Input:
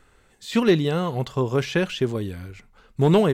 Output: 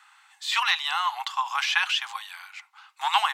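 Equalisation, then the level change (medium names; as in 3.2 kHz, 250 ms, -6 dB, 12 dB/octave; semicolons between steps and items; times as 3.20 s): rippled Chebyshev high-pass 790 Hz, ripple 3 dB; treble shelf 7.8 kHz -6.5 dB; +8.5 dB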